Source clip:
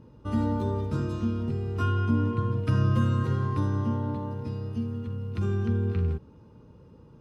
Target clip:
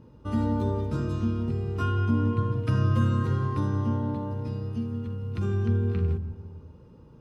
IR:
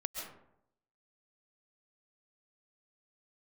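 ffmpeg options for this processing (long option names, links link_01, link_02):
-filter_complex "[0:a]asplit=2[link_01][link_02];[link_02]aemphasis=mode=reproduction:type=riaa[link_03];[1:a]atrim=start_sample=2205,adelay=149[link_04];[link_03][link_04]afir=irnorm=-1:irlink=0,volume=-18.5dB[link_05];[link_01][link_05]amix=inputs=2:normalize=0"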